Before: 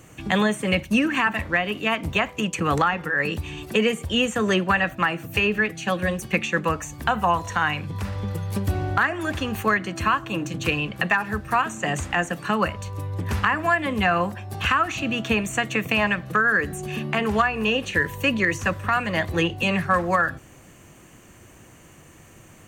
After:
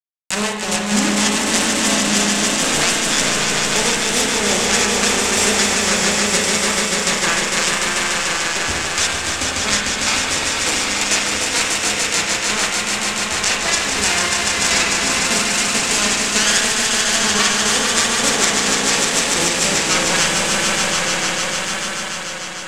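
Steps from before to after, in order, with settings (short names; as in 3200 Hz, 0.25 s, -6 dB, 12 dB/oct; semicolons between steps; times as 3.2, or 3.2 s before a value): self-modulated delay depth 0.75 ms; bell 110 Hz -8 dB 1.4 oct; bit-crush 4-bit; synth low-pass 7600 Hz, resonance Q 2.6; swelling echo 0.148 s, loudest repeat 5, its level -4.5 dB; vibrato 0.79 Hz 37 cents; reverb RT60 0.65 s, pre-delay 34 ms, DRR 2 dB; gain -1.5 dB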